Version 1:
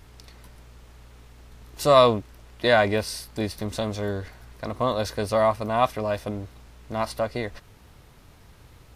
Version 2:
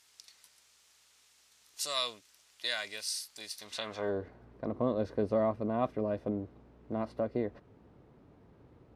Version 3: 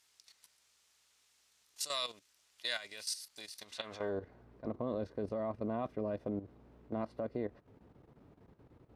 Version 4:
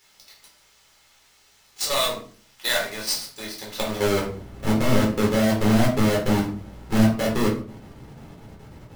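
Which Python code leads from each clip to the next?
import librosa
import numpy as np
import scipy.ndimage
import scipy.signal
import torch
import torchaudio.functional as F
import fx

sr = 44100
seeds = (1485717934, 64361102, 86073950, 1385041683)

y1 = fx.dynamic_eq(x, sr, hz=840.0, q=1.4, threshold_db=-33.0, ratio=4.0, max_db=-6)
y1 = fx.filter_sweep_bandpass(y1, sr, from_hz=6900.0, to_hz=310.0, start_s=3.57, end_s=4.27, q=0.97)
y2 = fx.level_steps(y1, sr, step_db=12)
y3 = fx.halfwave_hold(y2, sr)
y3 = fx.room_shoebox(y3, sr, seeds[0], volume_m3=330.0, walls='furnished', distance_m=4.1)
y3 = F.gain(torch.from_numpy(y3), 4.5).numpy()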